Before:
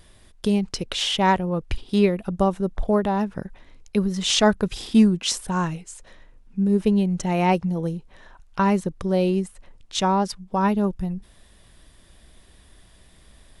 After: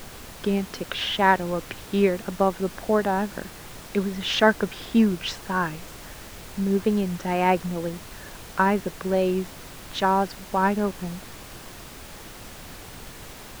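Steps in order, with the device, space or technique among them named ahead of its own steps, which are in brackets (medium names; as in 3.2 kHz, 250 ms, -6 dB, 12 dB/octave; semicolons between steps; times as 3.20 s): horn gramophone (band-pass 230–3100 Hz; peaking EQ 1.6 kHz +8 dB 0.36 oct; wow and flutter; pink noise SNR 15 dB)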